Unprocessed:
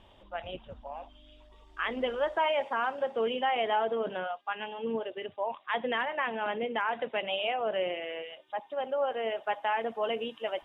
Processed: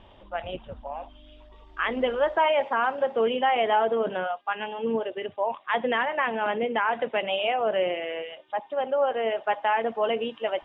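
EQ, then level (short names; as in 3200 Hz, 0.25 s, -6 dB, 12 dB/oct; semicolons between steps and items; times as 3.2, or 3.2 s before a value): Bessel low-pass 3100 Hz, order 2; +6.0 dB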